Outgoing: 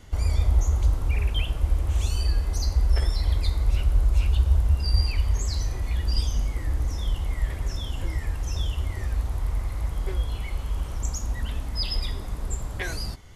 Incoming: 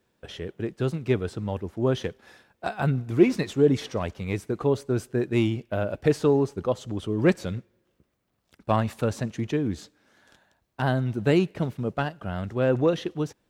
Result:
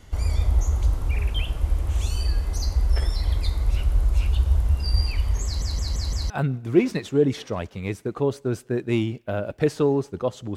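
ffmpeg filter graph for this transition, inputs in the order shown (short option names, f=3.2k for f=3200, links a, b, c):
-filter_complex "[0:a]apad=whole_dur=10.56,atrim=end=10.56,asplit=5[a][b][c][d][e];[a]atrim=end=5.622[f];[b]atrim=start=5.448:end=5.622[g];[c]atrim=start=5.448:end=5.622[h];[d]atrim=start=5.448:end=5.622[i];[e]atrim=start=5.448:end=5.622[j];[1:a]atrim=start=2.738:end=7[k];[f][g]acrossfade=d=0.004:c1=hsin:c2=hsin[l];[l][h]acrossfade=d=0.004:c1=hsin:c2=hsin[m];[m][i]acrossfade=d=0.004:c1=hsin:c2=hsin[n];[n][j]acrossfade=d=0.004:c1=hsin:c2=hsin[o];[o][k]acrossfade=d=0.004:c1=hsin:c2=hsin"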